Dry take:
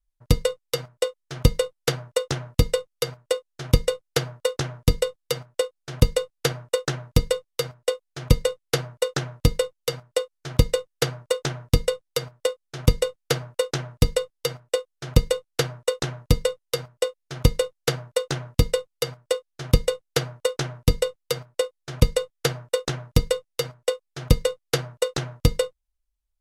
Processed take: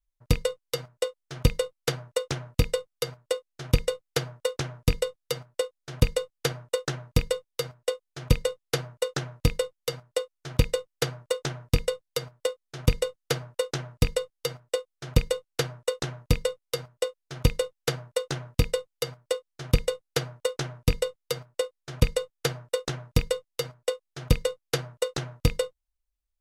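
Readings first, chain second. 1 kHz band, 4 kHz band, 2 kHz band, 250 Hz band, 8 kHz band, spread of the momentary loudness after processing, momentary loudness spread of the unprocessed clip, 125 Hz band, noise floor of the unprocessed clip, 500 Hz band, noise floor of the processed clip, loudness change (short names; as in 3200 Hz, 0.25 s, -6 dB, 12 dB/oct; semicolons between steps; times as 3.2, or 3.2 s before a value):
-4.0 dB, -4.0 dB, -3.0 dB, -4.0 dB, -4.0 dB, 6 LU, 6 LU, -4.0 dB, -78 dBFS, -4.0 dB, -82 dBFS, -4.0 dB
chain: rattling part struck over -21 dBFS, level -16 dBFS; gain -4 dB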